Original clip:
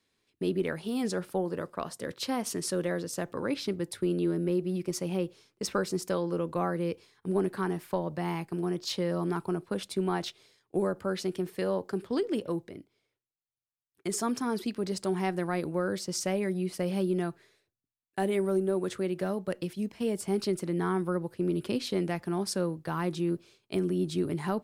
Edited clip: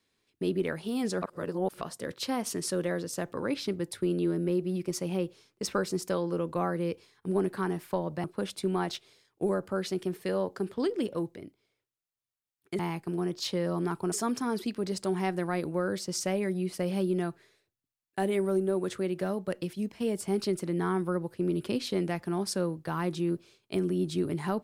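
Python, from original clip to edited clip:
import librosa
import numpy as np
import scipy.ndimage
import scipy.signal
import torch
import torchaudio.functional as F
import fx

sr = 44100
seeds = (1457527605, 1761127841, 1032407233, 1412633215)

y = fx.edit(x, sr, fx.reverse_span(start_s=1.22, length_s=0.59),
    fx.move(start_s=8.24, length_s=1.33, to_s=14.12), tone=tone)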